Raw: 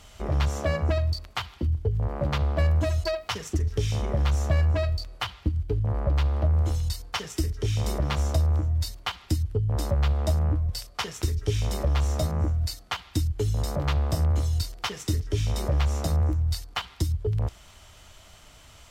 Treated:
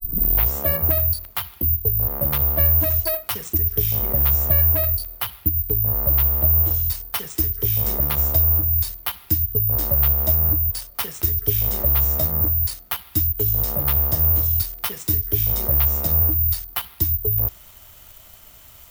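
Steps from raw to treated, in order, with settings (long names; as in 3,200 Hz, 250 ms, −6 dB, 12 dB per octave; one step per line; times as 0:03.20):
turntable start at the beginning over 0.54 s
bad sample-rate conversion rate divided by 3×, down none, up zero stuff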